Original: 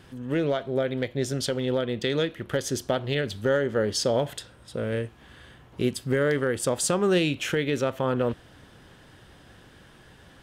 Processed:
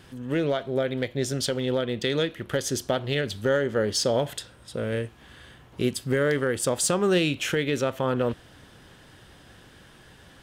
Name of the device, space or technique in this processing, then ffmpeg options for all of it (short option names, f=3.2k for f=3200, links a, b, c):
exciter from parts: -filter_complex "[0:a]asplit=2[a][b];[b]highpass=f=3.3k:p=1,asoftclip=type=tanh:threshold=-28.5dB,volume=-5.5dB[c];[a][c]amix=inputs=2:normalize=0"